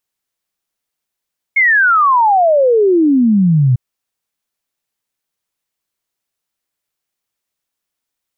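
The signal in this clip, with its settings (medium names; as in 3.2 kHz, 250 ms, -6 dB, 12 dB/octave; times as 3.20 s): log sweep 2.2 kHz -> 120 Hz 2.20 s -7.5 dBFS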